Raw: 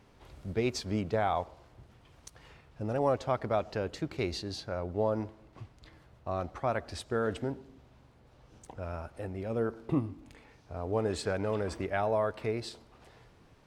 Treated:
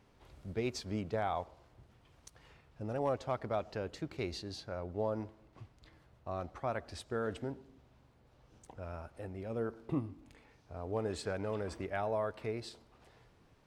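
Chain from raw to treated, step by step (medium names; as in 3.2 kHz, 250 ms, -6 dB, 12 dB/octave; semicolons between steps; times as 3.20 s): hard clipper -18 dBFS, distortion -37 dB; trim -5.5 dB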